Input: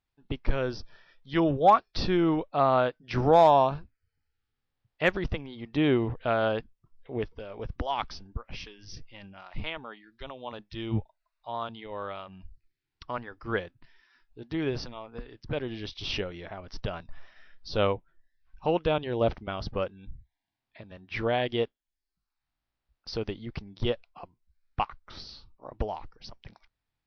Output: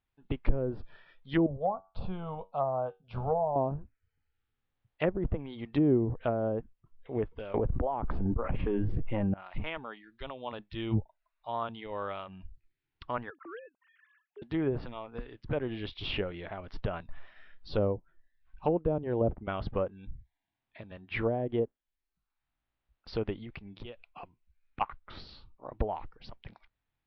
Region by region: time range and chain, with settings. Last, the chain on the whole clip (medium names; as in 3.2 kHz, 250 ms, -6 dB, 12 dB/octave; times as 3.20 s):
1.46–3.56 s: treble shelf 3.5 kHz -11.5 dB + static phaser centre 780 Hz, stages 4 + feedback comb 95 Hz, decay 0.23 s, mix 50%
7.54–9.34 s: low-pass 2.1 kHz 6 dB/octave + level flattener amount 100%
13.30–14.42 s: formants replaced by sine waves + compression 4:1, threshold -43 dBFS
23.42–24.81 s: peaking EQ 2.5 kHz +7 dB 0.37 oct + compression 12:1, threshold -39 dBFS
whole clip: low-pass 3.7 kHz 24 dB/octave; low-pass that closes with the level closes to 490 Hz, closed at -23 dBFS